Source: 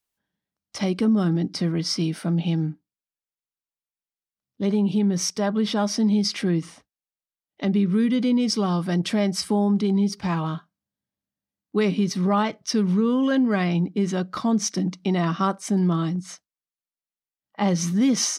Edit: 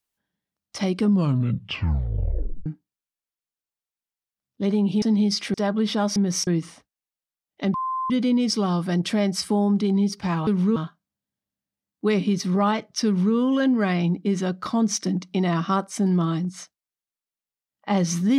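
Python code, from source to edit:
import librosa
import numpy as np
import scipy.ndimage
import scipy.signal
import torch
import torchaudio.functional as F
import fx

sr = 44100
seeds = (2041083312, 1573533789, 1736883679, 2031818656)

y = fx.edit(x, sr, fx.tape_stop(start_s=0.98, length_s=1.68),
    fx.swap(start_s=5.02, length_s=0.31, other_s=5.95, other_length_s=0.52),
    fx.bleep(start_s=7.74, length_s=0.36, hz=1040.0, db=-23.5),
    fx.duplicate(start_s=12.77, length_s=0.29, to_s=10.47), tone=tone)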